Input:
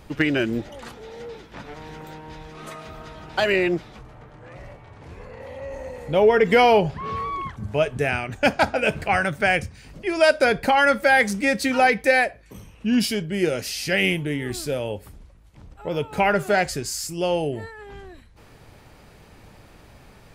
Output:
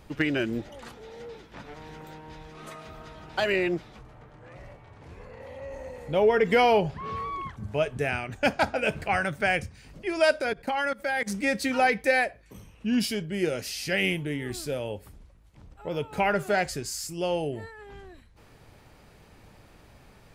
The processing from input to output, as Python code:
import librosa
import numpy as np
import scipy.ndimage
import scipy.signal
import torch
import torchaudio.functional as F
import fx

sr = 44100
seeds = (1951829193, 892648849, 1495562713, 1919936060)

y = fx.level_steps(x, sr, step_db=22, at=(10.4, 11.26), fade=0.02)
y = F.gain(torch.from_numpy(y), -5.0).numpy()